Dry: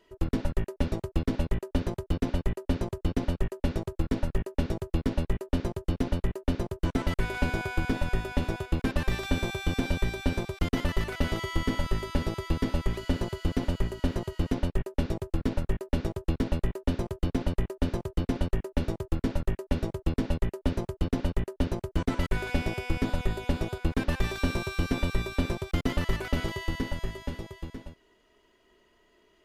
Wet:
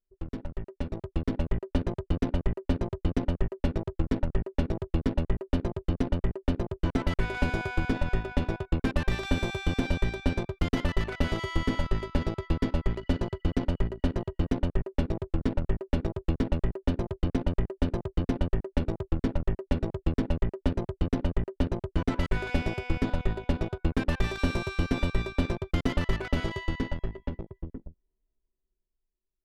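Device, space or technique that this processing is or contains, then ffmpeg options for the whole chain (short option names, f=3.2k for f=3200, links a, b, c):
voice memo with heavy noise removal: -af "anlmdn=1.58,dynaudnorm=f=130:g=17:m=10dB,volume=-8.5dB"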